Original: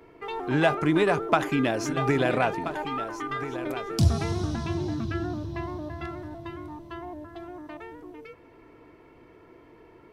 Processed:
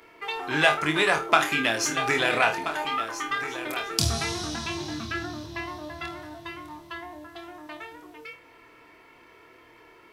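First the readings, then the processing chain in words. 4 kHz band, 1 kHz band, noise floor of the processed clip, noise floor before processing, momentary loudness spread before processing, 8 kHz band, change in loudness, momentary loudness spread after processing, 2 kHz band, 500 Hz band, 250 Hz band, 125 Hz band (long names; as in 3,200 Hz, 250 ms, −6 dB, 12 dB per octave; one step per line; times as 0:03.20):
+9.5 dB, +2.5 dB, −54 dBFS, −54 dBFS, 18 LU, +10.5 dB, +1.5 dB, 20 LU, +7.0 dB, −2.5 dB, −5.5 dB, −7.5 dB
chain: tilt shelving filter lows −9.5 dB, about 800 Hz
flutter between parallel walls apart 4.5 metres, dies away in 0.25 s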